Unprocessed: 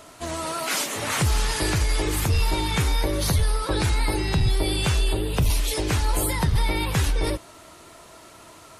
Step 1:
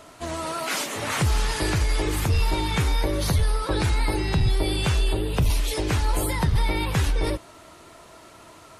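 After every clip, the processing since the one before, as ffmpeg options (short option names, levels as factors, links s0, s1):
-af "highshelf=f=4800:g=-5"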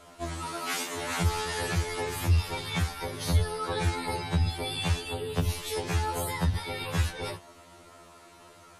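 -af "afftfilt=real='re*2*eq(mod(b,4),0)':imag='im*2*eq(mod(b,4),0)':win_size=2048:overlap=0.75,volume=0.75"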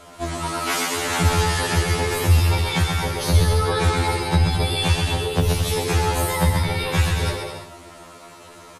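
-af "aecho=1:1:130|221|284.7|329.3|360.5:0.631|0.398|0.251|0.158|0.1,volume=2.37"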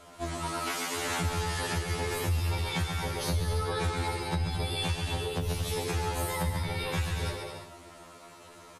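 -af "alimiter=limit=0.211:level=0:latency=1:release=369,volume=0.422"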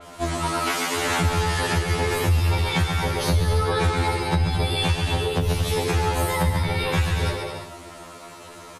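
-af "adynamicequalizer=threshold=0.00398:dfrequency=4200:dqfactor=0.7:tfrequency=4200:tqfactor=0.7:attack=5:release=100:ratio=0.375:range=2:mode=cutabove:tftype=highshelf,volume=2.82"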